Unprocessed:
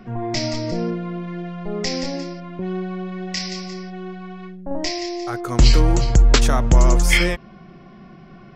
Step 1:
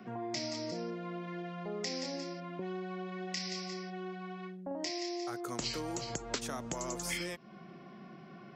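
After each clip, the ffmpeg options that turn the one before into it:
-filter_complex "[0:a]highpass=180,acrossover=split=390|4600[a][b][c];[a]acompressor=threshold=-37dB:ratio=4[d];[b]acompressor=threshold=-35dB:ratio=4[e];[c]acompressor=threshold=-35dB:ratio=4[f];[d][e][f]amix=inputs=3:normalize=0,volume=-6dB"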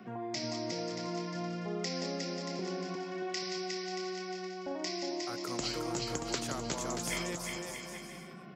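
-af "aecho=1:1:360|630|832.5|984.4|1098:0.631|0.398|0.251|0.158|0.1"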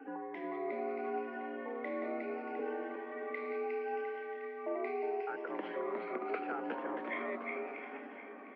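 -af "afftfilt=real='re*pow(10,11/40*sin(2*PI*(1.1*log(max(b,1)*sr/1024/100)/log(2)-(0.75)*(pts-256)/sr)))':imag='im*pow(10,11/40*sin(2*PI*(1.1*log(max(b,1)*sr/1024/100)/log(2)-(0.75)*(pts-256)/sr)))':win_size=1024:overlap=0.75,highpass=f=190:t=q:w=0.5412,highpass=f=190:t=q:w=1.307,lowpass=f=2.3k:t=q:w=0.5176,lowpass=f=2.3k:t=q:w=0.7071,lowpass=f=2.3k:t=q:w=1.932,afreqshift=61,aecho=1:1:706|1412|2118|2824:0.251|0.0955|0.0363|0.0138,volume=-2dB"

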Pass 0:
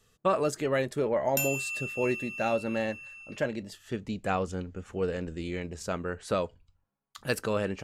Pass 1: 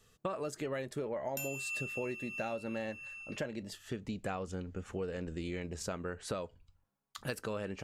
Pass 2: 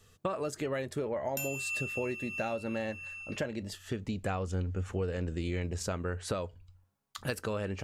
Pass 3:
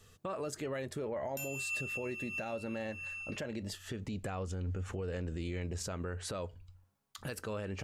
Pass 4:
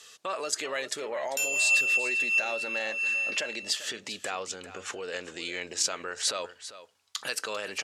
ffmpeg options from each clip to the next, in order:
-af "acompressor=threshold=-35dB:ratio=6"
-af "equalizer=f=92:t=o:w=0.28:g=10,volume=3.5dB"
-af "alimiter=level_in=7dB:limit=-24dB:level=0:latency=1:release=105,volume=-7dB,volume=1dB"
-af "crystalizer=i=8:c=0,highpass=440,lowpass=5.1k,aecho=1:1:395:0.2,volume=4dB"

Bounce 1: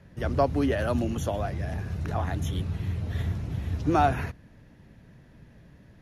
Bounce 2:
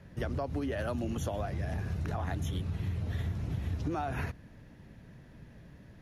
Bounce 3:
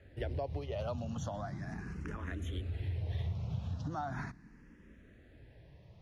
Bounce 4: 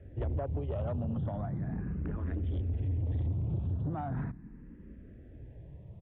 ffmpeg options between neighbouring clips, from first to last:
-af "alimiter=limit=-20dB:level=0:latency=1:release=158,acompressor=threshold=-30dB:ratio=6"
-filter_complex "[0:a]lowpass=7.1k,asplit=2[a][b];[b]afreqshift=0.38[c];[a][c]amix=inputs=2:normalize=1,volume=-1.5dB"
-af "tiltshelf=f=840:g=9.5,aresample=8000,asoftclip=type=tanh:threshold=-27.5dB,aresample=44100"

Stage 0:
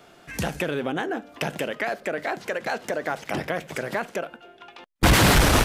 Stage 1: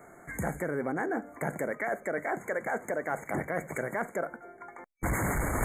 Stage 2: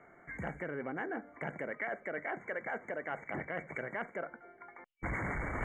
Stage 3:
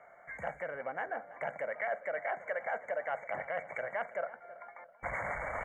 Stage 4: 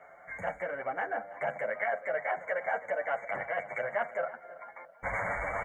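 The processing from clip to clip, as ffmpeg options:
-af "afftfilt=real='re*(1-between(b*sr/4096,2300,6400))':imag='im*(1-between(b*sr/4096,2300,6400))':win_size=4096:overlap=0.75,areverse,acompressor=threshold=-27dB:ratio=16,areverse"
-af "lowpass=f=2.9k:t=q:w=15,volume=-8dB"
-filter_complex "[0:a]lowshelf=f=450:t=q:w=3:g=-9,asplit=2[a][b];[b]adelay=328,lowpass=f=1.9k:p=1,volume=-16dB,asplit=2[c][d];[d]adelay=328,lowpass=f=1.9k:p=1,volume=0.47,asplit=2[e][f];[f]adelay=328,lowpass=f=1.9k:p=1,volume=0.47,asplit=2[g][h];[h]adelay=328,lowpass=f=1.9k:p=1,volume=0.47[i];[a][c][e][g][i]amix=inputs=5:normalize=0"
-filter_complex "[0:a]asplit=2[a][b];[b]adelay=9,afreqshift=0.43[c];[a][c]amix=inputs=2:normalize=1,volume=7dB"

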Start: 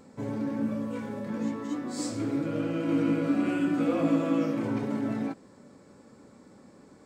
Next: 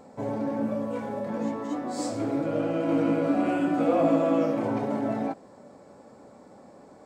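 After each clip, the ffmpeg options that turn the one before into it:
-af "equalizer=f=700:w=1.4:g=13,volume=-1dB"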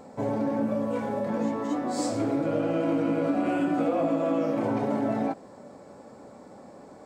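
-af "acompressor=threshold=-25dB:ratio=6,volume=3dB"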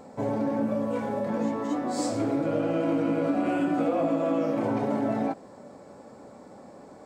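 -af anull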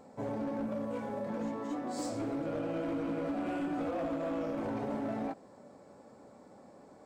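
-af "volume=22.5dB,asoftclip=hard,volume=-22.5dB,volume=-8dB"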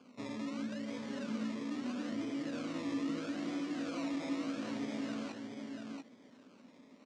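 -filter_complex "[0:a]acrusher=samples=23:mix=1:aa=0.000001:lfo=1:lforange=13.8:lforate=0.77,highpass=130,equalizer=f=250:t=q:w=4:g=10,equalizer=f=520:t=q:w=4:g=-3,equalizer=f=810:t=q:w=4:g=-7,lowpass=f=6.8k:w=0.5412,lowpass=f=6.8k:w=1.3066,asplit=2[a][b];[b]aecho=0:1:688:0.562[c];[a][c]amix=inputs=2:normalize=0,volume=-7dB"

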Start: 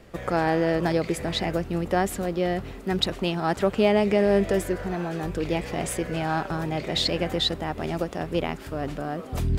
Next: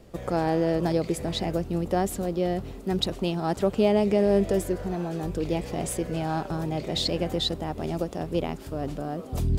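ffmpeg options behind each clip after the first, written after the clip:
-af "equalizer=f=1.8k:t=o:w=1.6:g=-9"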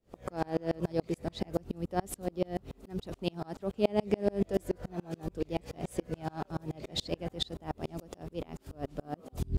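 -af "aeval=exprs='val(0)*pow(10,-34*if(lt(mod(-7*n/s,1),2*abs(-7)/1000),1-mod(-7*n/s,1)/(2*abs(-7)/1000),(mod(-7*n/s,1)-2*abs(-7)/1000)/(1-2*abs(-7)/1000))/20)':c=same"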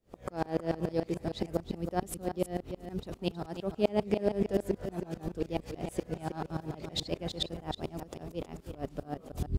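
-af "aecho=1:1:319:0.355"

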